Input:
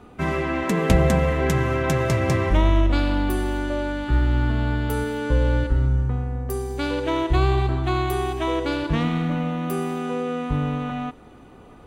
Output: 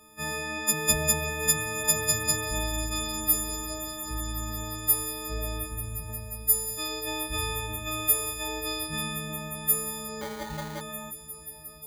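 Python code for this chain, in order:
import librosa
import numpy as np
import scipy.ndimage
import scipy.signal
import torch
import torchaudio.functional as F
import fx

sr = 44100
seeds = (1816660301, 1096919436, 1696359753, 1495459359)

y = fx.freq_snap(x, sr, grid_st=6)
y = scipy.signal.lfilter([1.0, -0.8], [1.0], y)
y = fx.echo_swell(y, sr, ms=178, loudest=5, wet_db=-16.5)
y = fx.sample_hold(y, sr, seeds[0], rate_hz=2700.0, jitter_pct=0, at=(10.21, 10.81))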